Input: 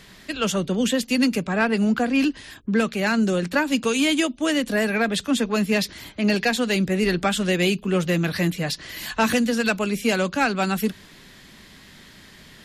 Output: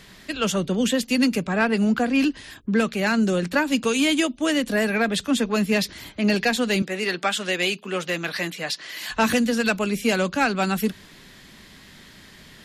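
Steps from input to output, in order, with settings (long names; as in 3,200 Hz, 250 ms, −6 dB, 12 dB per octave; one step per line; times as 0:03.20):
0:06.82–0:09.10: meter weighting curve A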